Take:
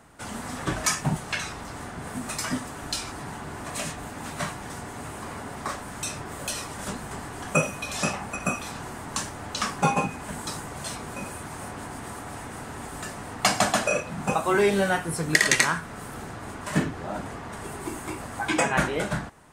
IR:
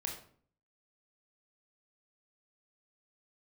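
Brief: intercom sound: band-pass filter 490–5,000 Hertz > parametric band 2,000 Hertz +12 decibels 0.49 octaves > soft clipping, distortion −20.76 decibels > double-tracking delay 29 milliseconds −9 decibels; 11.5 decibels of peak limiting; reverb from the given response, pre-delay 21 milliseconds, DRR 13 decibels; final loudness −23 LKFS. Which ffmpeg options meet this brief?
-filter_complex "[0:a]alimiter=limit=-14.5dB:level=0:latency=1,asplit=2[link_01][link_02];[1:a]atrim=start_sample=2205,adelay=21[link_03];[link_02][link_03]afir=irnorm=-1:irlink=0,volume=-13.5dB[link_04];[link_01][link_04]amix=inputs=2:normalize=0,highpass=490,lowpass=5000,equalizer=frequency=2000:width_type=o:width=0.49:gain=12,asoftclip=threshold=-11dB,asplit=2[link_05][link_06];[link_06]adelay=29,volume=-9dB[link_07];[link_05][link_07]amix=inputs=2:normalize=0,volume=5dB"

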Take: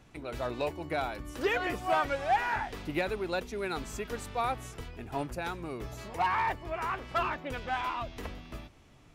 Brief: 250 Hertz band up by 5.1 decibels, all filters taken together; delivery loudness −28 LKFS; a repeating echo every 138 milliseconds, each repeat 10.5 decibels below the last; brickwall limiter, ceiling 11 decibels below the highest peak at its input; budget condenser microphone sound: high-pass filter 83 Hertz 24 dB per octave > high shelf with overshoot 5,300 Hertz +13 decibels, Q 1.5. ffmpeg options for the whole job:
ffmpeg -i in.wav -af "equalizer=frequency=250:width_type=o:gain=7,alimiter=level_in=3.5dB:limit=-24dB:level=0:latency=1,volume=-3.5dB,highpass=frequency=83:width=0.5412,highpass=frequency=83:width=1.3066,highshelf=frequency=5300:width_type=q:width=1.5:gain=13,aecho=1:1:138|276|414:0.299|0.0896|0.0269,volume=7.5dB" out.wav

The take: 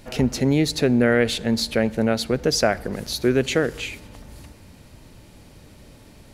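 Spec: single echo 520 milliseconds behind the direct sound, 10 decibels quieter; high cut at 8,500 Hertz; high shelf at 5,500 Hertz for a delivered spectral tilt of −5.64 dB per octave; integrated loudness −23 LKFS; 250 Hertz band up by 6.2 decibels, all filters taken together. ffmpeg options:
ffmpeg -i in.wav -af "lowpass=8500,equalizer=frequency=250:width_type=o:gain=7,highshelf=frequency=5500:gain=-4.5,aecho=1:1:520:0.316,volume=-5dB" out.wav

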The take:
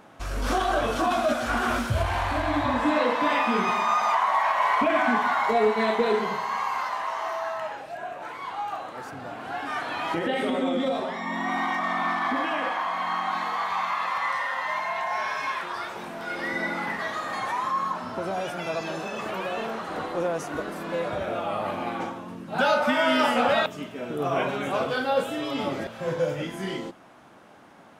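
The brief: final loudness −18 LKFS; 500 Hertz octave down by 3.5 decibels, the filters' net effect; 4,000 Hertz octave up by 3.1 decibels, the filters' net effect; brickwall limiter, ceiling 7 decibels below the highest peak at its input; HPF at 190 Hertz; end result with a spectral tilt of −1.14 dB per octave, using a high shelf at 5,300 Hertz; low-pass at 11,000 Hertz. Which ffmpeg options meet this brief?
ffmpeg -i in.wav -af "highpass=190,lowpass=11000,equalizer=frequency=500:width_type=o:gain=-4.5,equalizer=frequency=4000:width_type=o:gain=5.5,highshelf=frequency=5300:gain=-3.5,volume=11dB,alimiter=limit=-7.5dB:level=0:latency=1" out.wav

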